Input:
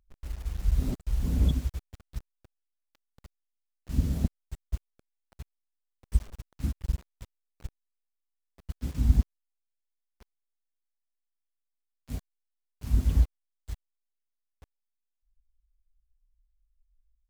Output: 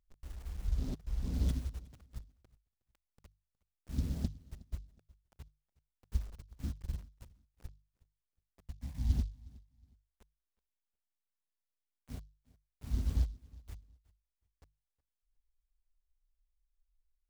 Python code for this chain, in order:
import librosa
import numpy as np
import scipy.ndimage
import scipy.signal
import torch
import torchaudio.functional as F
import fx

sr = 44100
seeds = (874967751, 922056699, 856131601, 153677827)

y = fx.hum_notches(x, sr, base_hz=50, count=3)
y = fx.high_shelf(y, sr, hz=6600.0, db=-10.5, at=(0.67, 1.34))
y = fx.fixed_phaser(y, sr, hz=2000.0, stages=8, at=(8.7, 9.11))
y = fx.echo_feedback(y, sr, ms=365, feedback_pct=27, wet_db=-23)
y = fx.noise_mod_delay(y, sr, seeds[0], noise_hz=4400.0, depth_ms=0.061)
y = y * 10.0 ** (-7.5 / 20.0)